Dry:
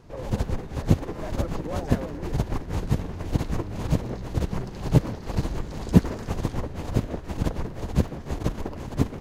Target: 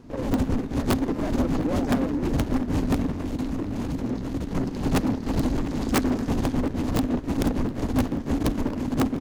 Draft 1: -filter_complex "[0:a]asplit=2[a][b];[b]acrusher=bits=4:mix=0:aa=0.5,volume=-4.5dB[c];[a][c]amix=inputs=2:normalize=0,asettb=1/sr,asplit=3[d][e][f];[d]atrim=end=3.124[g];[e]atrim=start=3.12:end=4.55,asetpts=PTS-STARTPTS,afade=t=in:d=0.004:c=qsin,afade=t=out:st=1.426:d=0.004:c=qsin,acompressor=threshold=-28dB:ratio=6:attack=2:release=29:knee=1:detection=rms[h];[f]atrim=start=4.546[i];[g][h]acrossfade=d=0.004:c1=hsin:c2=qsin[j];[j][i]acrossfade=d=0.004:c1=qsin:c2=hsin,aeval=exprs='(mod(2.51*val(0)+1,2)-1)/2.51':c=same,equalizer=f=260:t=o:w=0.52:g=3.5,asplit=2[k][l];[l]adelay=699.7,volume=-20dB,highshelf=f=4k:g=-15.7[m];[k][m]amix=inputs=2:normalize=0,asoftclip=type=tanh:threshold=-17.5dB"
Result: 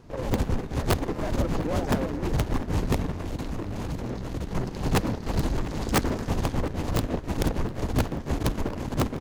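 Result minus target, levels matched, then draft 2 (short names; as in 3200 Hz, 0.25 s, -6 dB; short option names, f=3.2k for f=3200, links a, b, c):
250 Hz band -3.5 dB
-filter_complex "[0:a]asplit=2[a][b];[b]acrusher=bits=4:mix=0:aa=0.5,volume=-4.5dB[c];[a][c]amix=inputs=2:normalize=0,asettb=1/sr,asplit=3[d][e][f];[d]atrim=end=3.124[g];[e]atrim=start=3.12:end=4.55,asetpts=PTS-STARTPTS,afade=t=in:d=0.004:c=qsin,afade=t=out:st=1.426:d=0.004:c=qsin,acompressor=threshold=-28dB:ratio=6:attack=2:release=29:knee=1:detection=rms[h];[f]atrim=start=4.546[i];[g][h]acrossfade=d=0.004:c1=hsin:c2=qsin[j];[j][i]acrossfade=d=0.004:c1=qsin:c2=hsin,aeval=exprs='(mod(2.51*val(0)+1,2)-1)/2.51':c=same,equalizer=f=260:t=o:w=0.52:g=15,asplit=2[k][l];[l]adelay=699.7,volume=-20dB,highshelf=f=4k:g=-15.7[m];[k][m]amix=inputs=2:normalize=0,asoftclip=type=tanh:threshold=-17.5dB"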